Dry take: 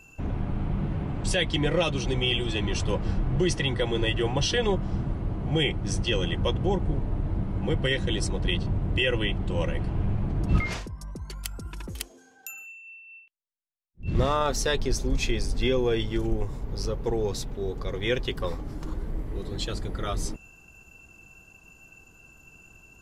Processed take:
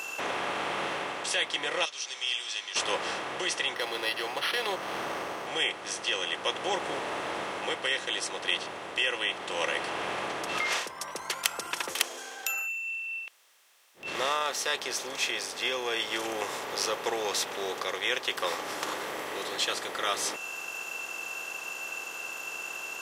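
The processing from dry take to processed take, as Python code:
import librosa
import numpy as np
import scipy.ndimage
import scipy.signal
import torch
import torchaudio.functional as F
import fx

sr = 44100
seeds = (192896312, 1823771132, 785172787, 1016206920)

y = fx.bandpass_q(x, sr, hz=5500.0, q=3.7, at=(1.84, 2.75), fade=0.02)
y = fx.resample_linear(y, sr, factor=6, at=(3.75, 5.47))
y = fx.highpass(y, sr, hz=830.0, slope=12, at=(12.59, 13.06))
y = fx.bin_compress(y, sr, power=0.6)
y = scipy.signal.sosfilt(scipy.signal.butter(2, 770.0, 'highpass', fs=sr, output='sos'), y)
y = fx.rider(y, sr, range_db=4, speed_s=0.5)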